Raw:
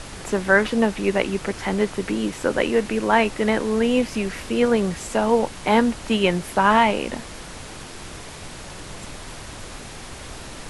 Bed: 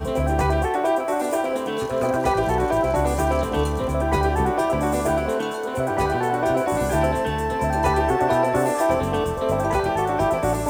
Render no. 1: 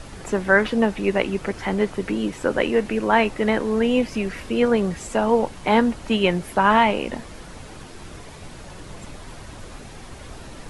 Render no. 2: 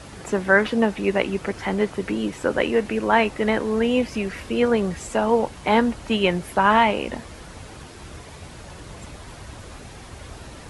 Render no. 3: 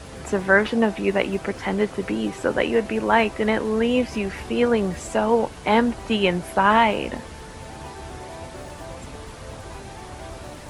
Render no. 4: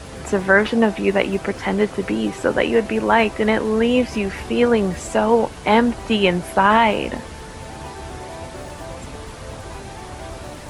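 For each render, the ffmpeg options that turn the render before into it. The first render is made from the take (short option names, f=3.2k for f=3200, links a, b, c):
-af "afftdn=nr=7:nf=-38"
-af "highpass=65,asubboost=boost=2:cutoff=100"
-filter_complex "[1:a]volume=-19.5dB[a];[0:a][a]amix=inputs=2:normalize=0"
-af "volume=3.5dB,alimiter=limit=-2dB:level=0:latency=1"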